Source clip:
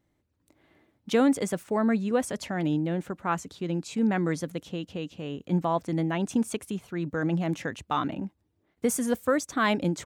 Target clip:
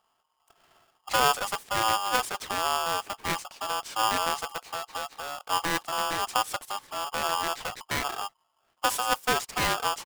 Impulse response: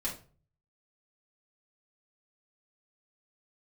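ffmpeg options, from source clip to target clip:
-filter_complex "[0:a]asplit=2[a][b];[b]asetrate=22050,aresample=44100,atempo=2,volume=-8dB[c];[a][c]amix=inputs=2:normalize=0,aeval=exprs='clip(val(0),-1,0.0211)':c=same,aeval=exprs='val(0)*sgn(sin(2*PI*1000*n/s))':c=same"

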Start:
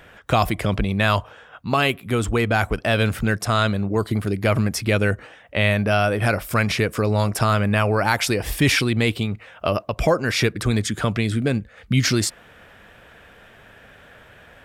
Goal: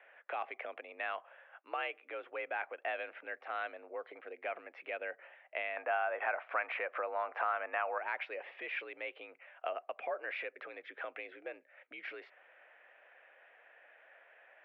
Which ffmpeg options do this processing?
-af "asetnsamples=n=441:p=0,asendcmd='5.77 equalizer g 3.5;7.98 equalizer g -10',equalizer=f=990:w=0.69:g=-9.5,acompressor=threshold=-23dB:ratio=6,highpass=f=490:t=q:w=0.5412,highpass=f=490:t=q:w=1.307,lowpass=f=2.4k:t=q:w=0.5176,lowpass=f=2.4k:t=q:w=0.7071,lowpass=f=2.4k:t=q:w=1.932,afreqshift=63,volume=-5.5dB"

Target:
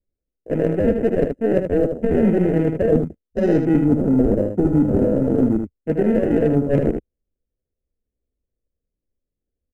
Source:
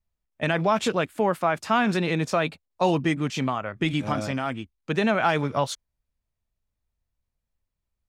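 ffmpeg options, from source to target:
-af "acrusher=samples=39:mix=1:aa=0.000001,afwtdn=0.0224,equalizer=f=125:t=o:w=1:g=-4,equalizer=f=250:t=o:w=1:g=4,equalizer=f=500:t=o:w=1:g=11,equalizer=f=1k:t=o:w=1:g=-10,equalizer=f=2k:t=o:w=1:g=8,equalizer=f=4k:t=o:w=1:g=-10,equalizer=f=8k:t=o:w=1:g=6,areverse,acompressor=threshold=-26dB:ratio=10,areverse,aeval=exprs='0.119*(cos(1*acos(clip(val(0)/0.119,-1,1)))-cos(1*PI/2))+0.00211*(cos(8*acos(clip(val(0)/0.119,-1,1)))-cos(8*PI/2))':c=same,atempo=0.83,tiltshelf=f=640:g=7,aecho=1:1:77:0.473,volume=8.5dB"

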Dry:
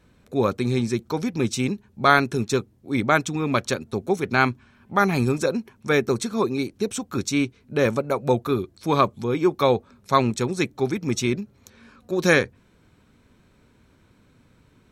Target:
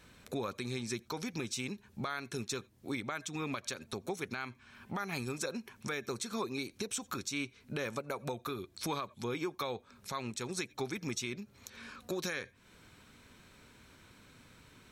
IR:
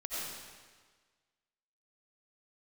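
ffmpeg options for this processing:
-filter_complex "[0:a]asplit=2[a][b];[1:a]atrim=start_sample=2205,atrim=end_sample=3528,asetrate=37926,aresample=44100[c];[b][c]afir=irnorm=-1:irlink=0,volume=-21dB[d];[a][d]amix=inputs=2:normalize=0,acompressor=threshold=-32dB:ratio=6,tiltshelf=f=970:g=-5.5,alimiter=level_in=2.5dB:limit=-24dB:level=0:latency=1:release=120,volume=-2.5dB,volume=1dB"

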